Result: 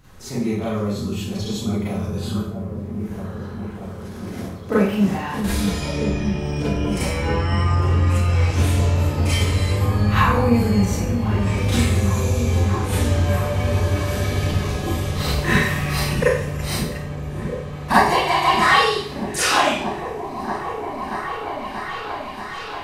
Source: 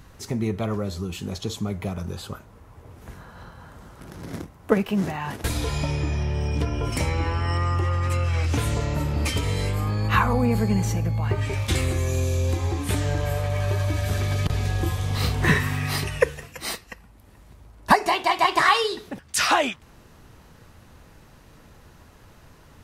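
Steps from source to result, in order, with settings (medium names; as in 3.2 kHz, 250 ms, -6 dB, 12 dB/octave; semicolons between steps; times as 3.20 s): delay with an opening low-pass 633 ms, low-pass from 200 Hz, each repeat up 1 oct, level -3 dB; Schroeder reverb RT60 0.58 s, combs from 30 ms, DRR -9.5 dB; trim -6.5 dB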